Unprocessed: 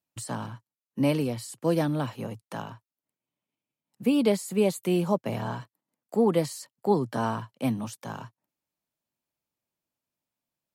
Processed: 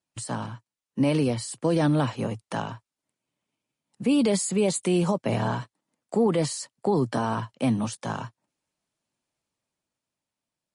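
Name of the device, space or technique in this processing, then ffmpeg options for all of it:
low-bitrate web radio: -filter_complex "[0:a]asettb=1/sr,asplit=3[link_01][link_02][link_03];[link_01]atrim=end=4.094[link_04];[link_02]atrim=start=4.09:end=5.23,asetpts=PTS-STARTPTS,afade=type=in:duration=0.004:curve=qsin,afade=type=out:start_time=1.136:duration=0.004:curve=qsin,highshelf=frequency=6800:gain=6[link_05];[link_03]atrim=start=5.226[link_06];[link_04][link_05]acrossfade=duration=0.004:curve1=hsin:curve2=qsin[link_07];[link_07][link_06]acrossfade=duration=0.004:curve1=qsin:curve2=hsin,dynaudnorm=framelen=110:gausssize=21:maxgain=4dB,alimiter=limit=-16.5dB:level=0:latency=1:release=46,volume=2.5dB" -ar 32000 -c:a libmp3lame -b:a 40k

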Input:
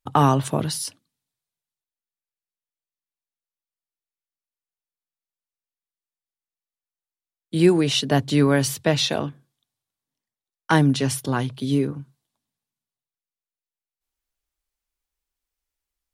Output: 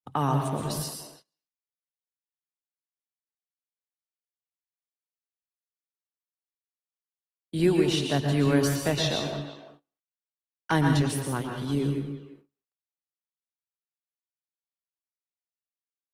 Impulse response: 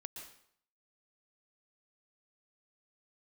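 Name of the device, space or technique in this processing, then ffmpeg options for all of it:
speakerphone in a meeting room: -filter_complex "[1:a]atrim=start_sample=2205[link_01];[0:a][link_01]afir=irnorm=-1:irlink=0,asplit=2[link_02][link_03];[link_03]adelay=340,highpass=300,lowpass=3400,asoftclip=type=hard:threshold=-16.5dB,volume=-14dB[link_04];[link_02][link_04]amix=inputs=2:normalize=0,dynaudnorm=framelen=150:gausssize=9:maxgain=3dB,agate=range=-23dB:threshold=-48dB:ratio=16:detection=peak,volume=-4dB" -ar 48000 -c:a libopus -b:a 24k

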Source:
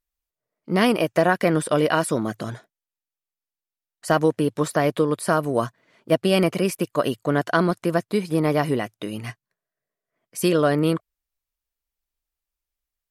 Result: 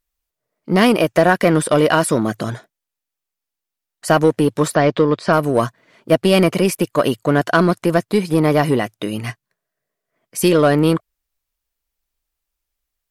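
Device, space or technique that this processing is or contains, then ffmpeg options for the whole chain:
parallel distortion: -filter_complex "[0:a]asplit=2[link_01][link_02];[link_02]asoftclip=type=hard:threshold=-19dB,volume=-5dB[link_03];[link_01][link_03]amix=inputs=2:normalize=0,asplit=3[link_04][link_05][link_06];[link_04]afade=type=out:start_time=4.74:duration=0.02[link_07];[link_05]lowpass=frequency=5600:width=0.5412,lowpass=frequency=5600:width=1.3066,afade=type=in:start_time=4.74:duration=0.02,afade=type=out:start_time=5.32:duration=0.02[link_08];[link_06]afade=type=in:start_time=5.32:duration=0.02[link_09];[link_07][link_08][link_09]amix=inputs=3:normalize=0,volume=3dB"

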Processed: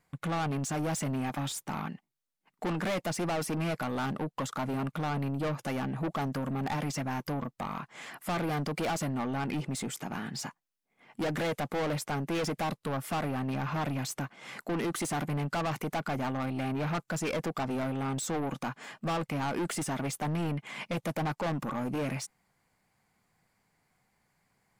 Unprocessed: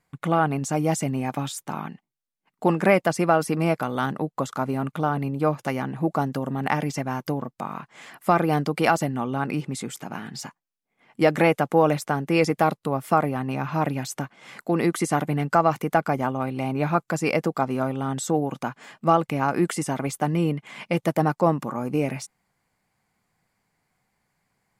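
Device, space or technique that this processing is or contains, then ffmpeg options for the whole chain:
saturation between pre-emphasis and de-emphasis: -af "highshelf=frequency=7100:gain=7,asoftclip=type=tanh:threshold=-28.5dB,highshelf=frequency=7100:gain=-7"

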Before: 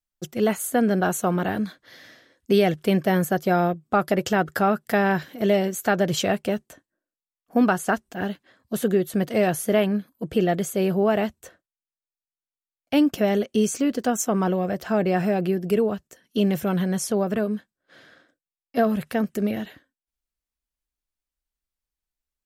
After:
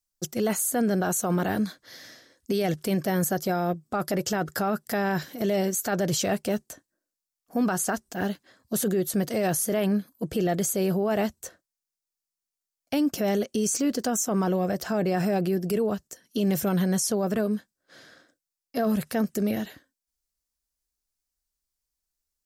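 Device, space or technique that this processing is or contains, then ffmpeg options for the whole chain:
over-bright horn tweeter: -af "highshelf=frequency=4000:width_type=q:width=1.5:gain=6.5,alimiter=limit=-17.5dB:level=0:latency=1:release=19"

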